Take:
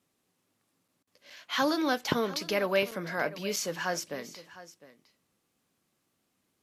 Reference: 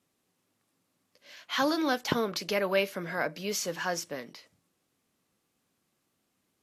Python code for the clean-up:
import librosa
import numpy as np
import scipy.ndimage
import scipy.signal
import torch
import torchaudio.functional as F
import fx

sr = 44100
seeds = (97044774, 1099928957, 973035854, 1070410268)

y = fx.fix_interpolate(x, sr, at_s=(0.88, 1.3, 2.91, 3.56), length_ms=5.0)
y = fx.fix_interpolate(y, sr, at_s=(1.03,), length_ms=40.0)
y = fx.fix_echo_inverse(y, sr, delay_ms=706, level_db=-17.0)